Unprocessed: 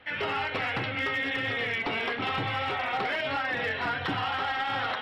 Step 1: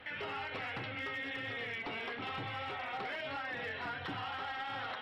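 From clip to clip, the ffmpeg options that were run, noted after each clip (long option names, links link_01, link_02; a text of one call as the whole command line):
ffmpeg -i in.wav -af "alimiter=level_in=10.5dB:limit=-24dB:level=0:latency=1:release=348,volume=-10.5dB,volume=1dB" out.wav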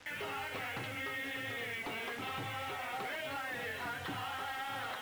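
ffmpeg -i in.wav -af "acrusher=bits=7:mix=0:aa=0.5" out.wav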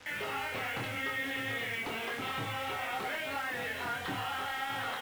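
ffmpeg -i in.wav -filter_complex "[0:a]asplit=2[link_01][link_02];[link_02]adelay=26,volume=-4dB[link_03];[link_01][link_03]amix=inputs=2:normalize=0,volume=2.5dB" out.wav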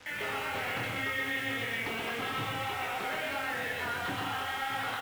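ffmpeg -i in.wav -af "aecho=1:1:125.4|169.1:0.708|0.282" out.wav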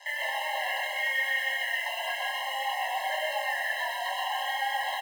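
ffmpeg -i in.wav -af "afftfilt=real='re*eq(mod(floor(b*sr/1024/540),2),1)':imag='im*eq(mod(floor(b*sr/1024/540),2),1)':win_size=1024:overlap=0.75,volume=6.5dB" out.wav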